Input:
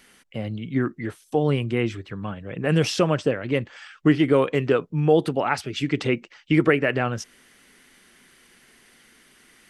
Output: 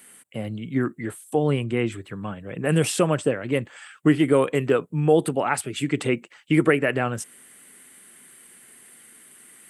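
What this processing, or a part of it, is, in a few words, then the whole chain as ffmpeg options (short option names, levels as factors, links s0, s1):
budget condenser microphone: -filter_complex "[0:a]highpass=96,highshelf=f=6900:t=q:w=3:g=8,asettb=1/sr,asplit=3[s0][s1][s2];[s0]atrim=end=1.354[s3];[s1]atrim=start=1.35:end=1.92,asetpts=PTS-STARTPTS,afade=t=in:d=0.004:c=qsin,afade=t=out:st=0.566:d=0.004:c=qsin,lowpass=6700[s4];[s2]atrim=start=1.916[s5];[s3][s4]acrossfade=d=0.004:c1=hsin:c2=qsin[s6];[s6][s5]acrossfade=d=0.004:c1=qsin:c2=hsin"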